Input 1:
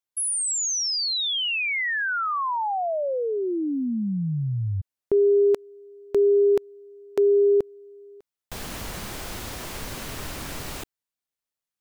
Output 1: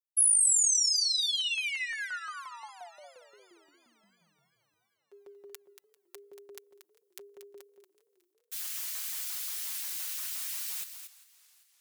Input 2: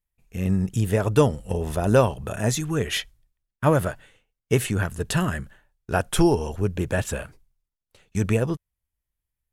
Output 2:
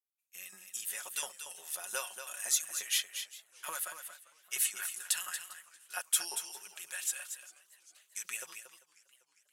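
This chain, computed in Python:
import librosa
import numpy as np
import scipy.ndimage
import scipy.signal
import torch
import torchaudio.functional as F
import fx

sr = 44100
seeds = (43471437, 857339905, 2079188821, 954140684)

y = fx.gate_hold(x, sr, open_db=-42.0, close_db=-44.0, hold_ms=102.0, range_db=-11, attack_ms=11.0, release_ms=53.0)
y = fx.filter_lfo_highpass(y, sr, shape='saw_up', hz=5.7, low_hz=840.0, high_hz=2200.0, q=0.86)
y = F.preemphasis(torch.from_numpy(y), 0.9).numpy()
y = y + 0.57 * np.pad(y, (int(5.5 * sr / 1000.0), 0))[:len(y)]
y = y + 10.0 ** (-9.0 / 20.0) * np.pad(y, (int(233 * sr / 1000.0), 0))[:len(y)]
y = fx.echo_warbled(y, sr, ms=398, feedback_pct=58, rate_hz=2.8, cents=129, wet_db=-21.0)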